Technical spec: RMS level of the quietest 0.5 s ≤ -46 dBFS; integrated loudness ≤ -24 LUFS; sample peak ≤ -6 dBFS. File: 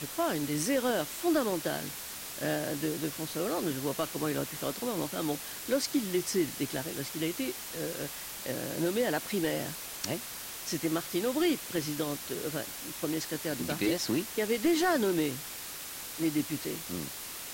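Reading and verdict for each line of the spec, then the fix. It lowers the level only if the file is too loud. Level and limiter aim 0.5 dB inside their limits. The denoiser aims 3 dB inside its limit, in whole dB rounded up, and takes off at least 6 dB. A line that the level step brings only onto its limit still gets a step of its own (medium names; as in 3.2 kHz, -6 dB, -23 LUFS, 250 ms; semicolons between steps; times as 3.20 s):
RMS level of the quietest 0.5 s -42 dBFS: fail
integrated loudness -32.0 LUFS: pass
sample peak -17.0 dBFS: pass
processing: noise reduction 7 dB, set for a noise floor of -42 dBFS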